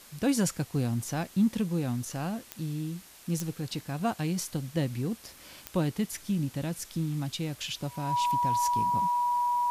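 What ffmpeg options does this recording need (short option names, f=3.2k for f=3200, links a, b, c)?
-af "adeclick=t=4,bandreject=f=970:w=30,afftdn=nr=24:nf=-52"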